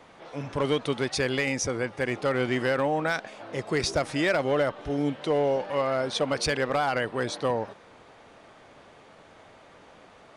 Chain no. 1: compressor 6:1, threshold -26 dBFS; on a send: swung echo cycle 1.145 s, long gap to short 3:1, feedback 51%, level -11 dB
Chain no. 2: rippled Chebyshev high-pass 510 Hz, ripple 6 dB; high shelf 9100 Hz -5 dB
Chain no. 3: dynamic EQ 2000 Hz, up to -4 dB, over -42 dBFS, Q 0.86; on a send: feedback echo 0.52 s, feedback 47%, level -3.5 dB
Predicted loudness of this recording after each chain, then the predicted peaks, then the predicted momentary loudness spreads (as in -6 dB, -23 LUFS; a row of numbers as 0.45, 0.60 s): -31.0, -32.0, -26.5 LUFS; -17.0, -16.0, -12.0 dBFS; 15, 12, 13 LU